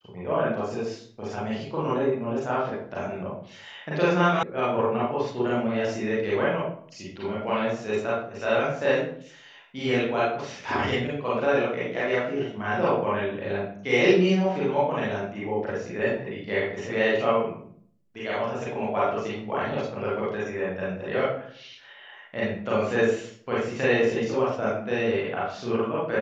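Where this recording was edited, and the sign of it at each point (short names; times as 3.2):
4.43 sound cut off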